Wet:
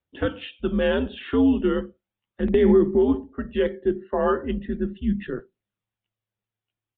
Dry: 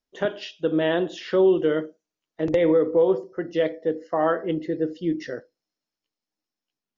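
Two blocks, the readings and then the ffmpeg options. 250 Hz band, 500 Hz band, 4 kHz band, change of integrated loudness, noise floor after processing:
+3.0 dB, −1.0 dB, −1.0 dB, +0.5 dB, below −85 dBFS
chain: -af "afreqshift=-110,aresample=8000,aresample=44100,aphaser=in_gain=1:out_gain=1:delay=2.9:decay=0.29:speed=0.37:type=triangular"

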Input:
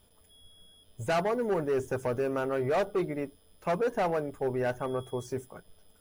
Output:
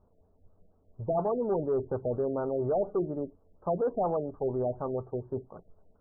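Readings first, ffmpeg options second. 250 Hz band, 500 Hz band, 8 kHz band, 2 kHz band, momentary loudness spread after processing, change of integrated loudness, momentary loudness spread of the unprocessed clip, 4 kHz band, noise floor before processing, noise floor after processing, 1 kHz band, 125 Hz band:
0.0 dB, 0.0 dB, can't be measured, below −15 dB, 9 LU, −0.5 dB, 10 LU, below −35 dB, −63 dBFS, −66 dBFS, −2.0 dB, 0.0 dB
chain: -af "asuperstop=centerf=2800:order=8:qfactor=0.55,afftfilt=real='re*lt(b*sr/1024,720*pow(2500/720,0.5+0.5*sin(2*PI*4.2*pts/sr)))':imag='im*lt(b*sr/1024,720*pow(2500/720,0.5+0.5*sin(2*PI*4.2*pts/sr)))':win_size=1024:overlap=0.75"

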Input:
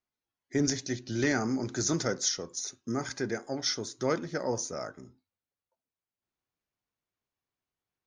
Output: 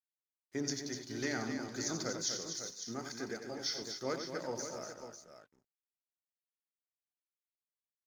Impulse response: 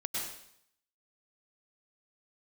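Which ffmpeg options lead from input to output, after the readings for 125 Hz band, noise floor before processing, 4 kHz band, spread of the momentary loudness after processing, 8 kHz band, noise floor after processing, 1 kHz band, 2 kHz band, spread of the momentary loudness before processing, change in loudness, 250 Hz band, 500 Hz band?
−11.0 dB, below −85 dBFS, −5.0 dB, 9 LU, −6.5 dB, below −85 dBFS, −7.0 dB, −7.0 dB, 7 LU, −7.5 dB, −9.0 dB, −8.0 dB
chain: -filter_complex "[0:a]highpass=frequency=140:poles=1,equalizer=frequency=4500:width=7.5:gain=7.5,bandreject=frequency=50:width_type=h:width=6,bandreject=frequency=100:width_type=h:width=6,bandreject=frequency=150:width_type=h:width=6,bandreject=frequency=200:width_type=h:width=6,bandreject=frequency=250:width_type=h:width=6,bandreject=frequency=300:width_type=h:width=6,bandreject=frequency=350:width_type=h:width=6,bandreject=frequency=400:width_type=h:width=6,aeval=exprs='sgn(val(0))*max(abs(val(0))-0.00266,0)':channel_layout=same,asplit=2[link_01][link_02];[link_02]aecho=0:1:89|246|388|550:0.376|0.422|0.112|0.316[link_03];[link_01][link_03]amix=inputs=2:normalize=0,volume=-8dB"

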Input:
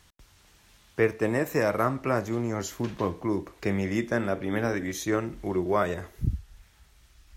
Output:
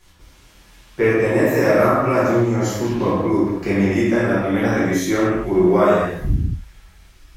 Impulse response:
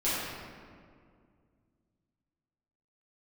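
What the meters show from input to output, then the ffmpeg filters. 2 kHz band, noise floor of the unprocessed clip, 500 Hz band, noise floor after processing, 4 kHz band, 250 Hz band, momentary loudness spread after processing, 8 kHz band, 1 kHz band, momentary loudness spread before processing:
+9.0 dB, −60 dBFS, +11.0 dB, −50 dBFS, +8.0 dB, +11.5 dB, 6 LU, +7.0 dB, +9.5 dB, 6 LU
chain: -filter_complex "[1:a]atrim=start_sample=2205,afade=type=out:start_time=0.31:duration=0.01,atrim=end_sample=14112[link_01];[0:a][link_01]afir=irnorm=-1:irlink=0"

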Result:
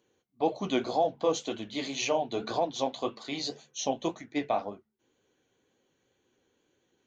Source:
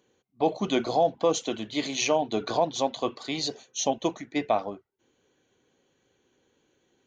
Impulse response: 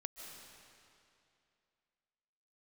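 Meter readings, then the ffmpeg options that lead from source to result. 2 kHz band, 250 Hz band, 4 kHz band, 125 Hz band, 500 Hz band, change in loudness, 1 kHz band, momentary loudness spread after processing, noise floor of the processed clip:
−3.5 dB, −3.5 dB, −4.0 dB, −4.5 dB, −3.5 dB, −4.0 dB, −3.5 dB, 7 LU, −76 dBFS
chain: -filter_complex "[0:a]bandreject=frequency=72.9:width_type=h:width=4,bandreject=frequency=145.8:width_type=h:width=4,bandreject=frequency=218.7:width_type=h:width=4,flanger=delay=8:depth=8.8:regen=-37:speed=1.9:shape=triangular,acrossover=split=7700[link_01][link_02];[link_02]acompressor=threshold=-60dB:ratio=4:attack=1:release=60[link_03];[link_01][link_03]amix=inputs=2:normalize=0"

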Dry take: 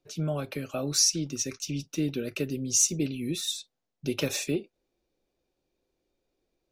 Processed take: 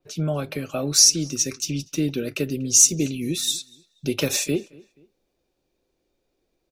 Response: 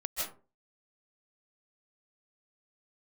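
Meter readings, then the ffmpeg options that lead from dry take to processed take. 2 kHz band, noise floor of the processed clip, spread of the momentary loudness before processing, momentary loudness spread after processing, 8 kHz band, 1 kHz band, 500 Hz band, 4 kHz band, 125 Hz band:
+5.0 dB, −75 dBFS, 11 LU, 14 LU, +8.5 dB, +5.0 dB, +5.0 dB, +7.5 dB, +5.0 dB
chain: -filter_complex "[0:a]asplit=2[link_01][link_02];[link_02]adelay=240,lowpass=frequency=3900:poles=1,volume=-23.5dB,asplit=2[link_03][link_04];[link_04]adelay=240,lowpass=frequency=3900:poles=1,volume=0.36[link_05];[link_03][link_05]amix=inputs=2:normalize=0[link_06];[link_01][link_06]amix=inputs=2:normalize=0,adynamicequalizer=threshold=0.0126:dfrequency=4600:dqfactor=0.7:tfrequency=4600:tqfactor=0.7:attack=5:release=100:ratio=0.375:range=2.5:mode=boostabove:tftype=highshelf,volume=5dB"

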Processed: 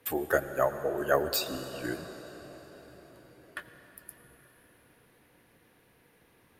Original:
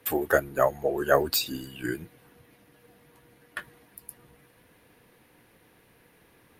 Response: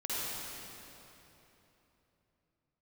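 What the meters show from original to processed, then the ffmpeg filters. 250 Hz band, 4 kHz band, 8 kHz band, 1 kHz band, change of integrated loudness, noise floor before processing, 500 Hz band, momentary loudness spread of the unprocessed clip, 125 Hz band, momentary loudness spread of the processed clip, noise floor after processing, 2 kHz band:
−3.5 dB, −4.0 dB, −4.0 dB, −4.0 dB, −4.0 dB, −61 dBFS, −3.5 dB, 20 LU, −4.0 dB, 22 LU, −64 dBFS, −4.0 dB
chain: -filter_complex "[0:a]asplit=2[link_01][link_02];[1:a]atrim=start_sample=2205,asetrate=25137,aresample=44100[link_03];[link_02][link_03]afir=irnorm=-1:irlink=0,volume=-19dB[link_04];[link_01][link_04]amix=inputs=2:normalize=0,volume=-5dB"

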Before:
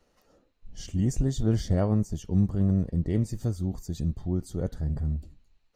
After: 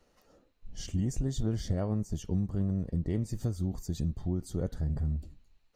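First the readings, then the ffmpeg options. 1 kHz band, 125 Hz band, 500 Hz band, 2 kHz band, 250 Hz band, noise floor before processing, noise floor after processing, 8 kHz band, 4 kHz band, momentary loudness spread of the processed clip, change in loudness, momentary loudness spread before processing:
−6.0 dB, −5.0 dB, −5.5 dB, can't be measured, −5.5 dB, −69 dBFS, −69 dBFS, −2.5 dB, −2.0 dB, 5 LU, −5.0 dB, 8 LU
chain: -af "acompressor=threshold=-26dB:ratio=6"

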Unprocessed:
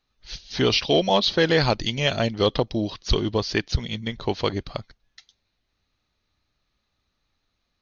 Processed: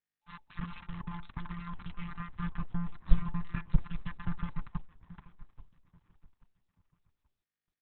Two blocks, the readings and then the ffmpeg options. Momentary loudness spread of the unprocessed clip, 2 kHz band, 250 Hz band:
13 LU, −19.5 dB, −13.0 dB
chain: -filter_complex "[0:a]bandreject=frequency=60:width_type=h:width=6,bandreject=frequency=120:width_type=h:width=6,bandreject=frequency=180:width_type=h:width=6,bandreject=frequency=240:width_type=h:width=6,afftfilt=real='hypot(re,im)*cos(PI*b)':imag='0':win_size=1024:overlap=0.75,acompressor=threshold=-36dB:ratio=3,aresample=16000,acrusher=bits=4:mix=0:aa=0.5,aresample=44100,asoftclip=type=tanh:threshold=-33.5dB,lowpass=1100,asplit=2[link_01][link_02];[link_02]aecho=0:1:832|1664|2496:0.126|0.0466|0.0172[link_03];[link_01][link_03]amix=inputs=2:normalize=0,asubboost=boost=7:cutoff=120,afftfilt=real='re*(1-between(b*sr/4096,260,870))':imag='im*(1-between(b*sr/4096,260,870))':win_size=4096:overlap=0.75,volume=13.5dB" -ar 48000 -c:a libopus -b:a 6k

